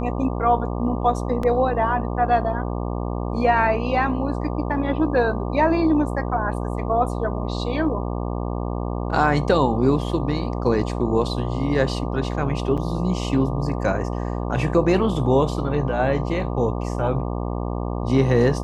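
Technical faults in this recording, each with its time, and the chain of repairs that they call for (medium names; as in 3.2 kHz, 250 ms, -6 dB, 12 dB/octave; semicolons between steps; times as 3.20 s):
buzz 60 Hz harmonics 20 -26 dBFS
1.43 s: dropout 3.5 ms
12.77–12.78 s: dropout 6.9 ms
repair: de-hum 60 Hz, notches 20; interpolate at 1.43 s, 3.5 ms; interpolate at 12.77 s, 6.9 ms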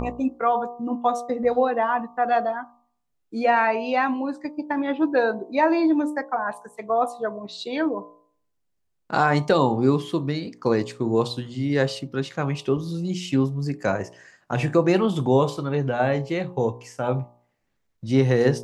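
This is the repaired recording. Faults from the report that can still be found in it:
nothing left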